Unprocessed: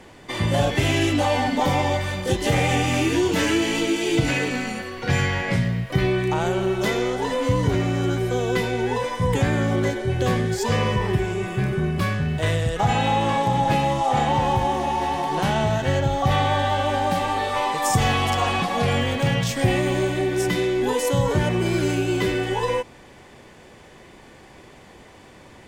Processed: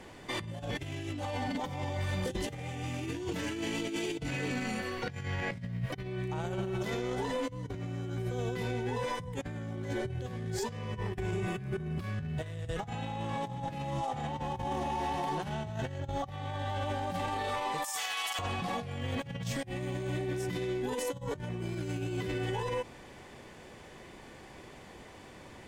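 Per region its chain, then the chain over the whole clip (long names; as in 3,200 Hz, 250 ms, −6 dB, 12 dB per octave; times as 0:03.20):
0:17.84–0:18.39: high-pass filter 800 Hz + spectral tilt +3 dB per octave
whole clip: dynamic equaliser 120 Hz, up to +6 dB, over −34 dBFS, Q 0.72; compressor whose output falls as the input rises −23 dBFS, ratio −0.5; brickwall limiter −17 dBFS; level −8.5 dB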